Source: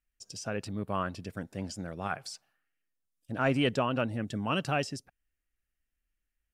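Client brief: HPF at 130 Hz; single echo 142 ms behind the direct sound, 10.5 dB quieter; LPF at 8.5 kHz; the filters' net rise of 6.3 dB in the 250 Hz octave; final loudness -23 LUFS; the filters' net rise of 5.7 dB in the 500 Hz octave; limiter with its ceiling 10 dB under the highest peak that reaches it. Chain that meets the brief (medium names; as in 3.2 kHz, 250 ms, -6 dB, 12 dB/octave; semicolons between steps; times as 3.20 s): high-pass 130 Hz; low-pass 8.5 kHz; peaking EQ 250 Hz +6.5 dB; peaking EQ 500 Hz +5.5 dB; peak limiter -20 dBFS; delay 142 ms -10.5 dB; trim +9.5 dB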